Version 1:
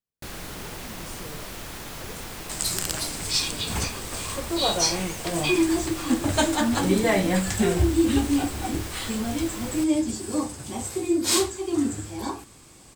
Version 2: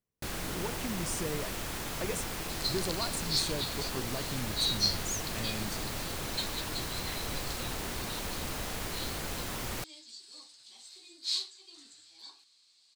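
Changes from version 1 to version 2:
speech +8.0 dB; second sound: add band-pass 4200 Hz, Q 6.6

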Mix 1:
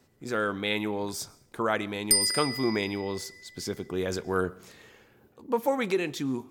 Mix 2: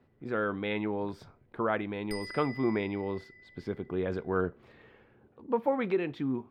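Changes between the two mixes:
speech: send off; master: add air absorption 460 m

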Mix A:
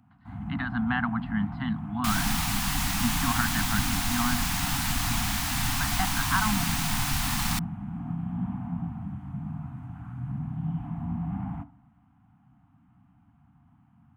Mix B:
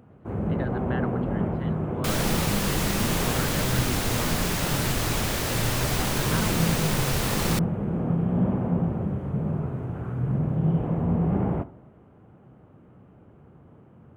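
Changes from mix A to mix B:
speech -9.0 dB; first sound +7.0 dB; master: remove Chebyshev band-stop 290–700 Hz, order 5

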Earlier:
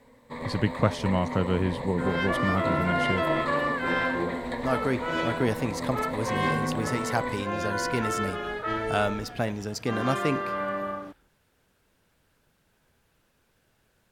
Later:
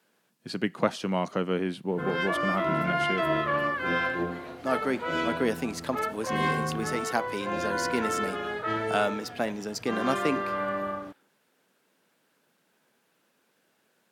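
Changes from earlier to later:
speech: add HPF 190 Hz 24 dB/oct; first sound: muted

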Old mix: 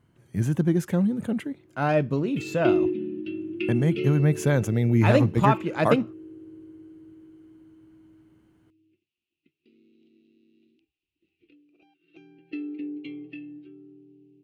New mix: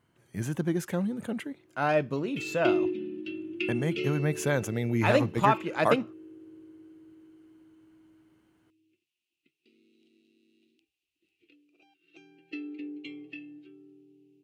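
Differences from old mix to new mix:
background: remove air absorption 140 m; master: add low shelf 310 Hz -10.5 dB

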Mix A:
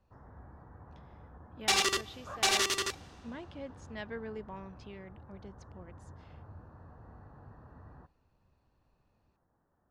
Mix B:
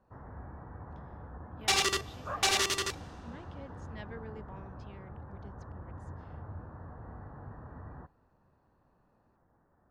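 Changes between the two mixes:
speech -5.5 dB; first sound +6.5 dB

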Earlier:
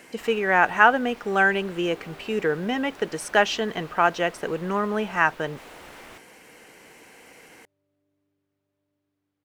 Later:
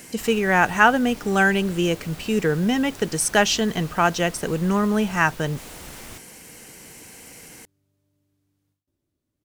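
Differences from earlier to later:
second sound: entry -0.75 s; master: add tone controls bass +13 dB, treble +14 dB

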